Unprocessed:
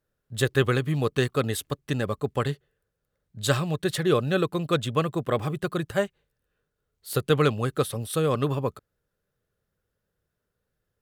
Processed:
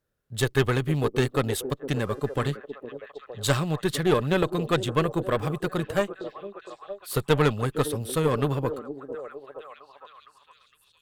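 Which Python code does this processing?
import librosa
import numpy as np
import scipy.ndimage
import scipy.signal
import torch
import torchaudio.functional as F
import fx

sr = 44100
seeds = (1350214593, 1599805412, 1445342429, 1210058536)

y = fx.echo_stepped(x, sr, ms=461, hz=330.0, octaves=0.7, feedback_pct=70, wet_db=-8)
y = fx.dmg_buzz(y, sr, base_hz=400.0, harmonics=32, level_db=-58.0, tilt_db=-5, odd_only=False, at=(1.94, 2.48), fade=0.02)
y = fx.cheby_harmonics(y, sr, harmonics=(4,), levels_db=(-16,), full_scale_db=-7.5)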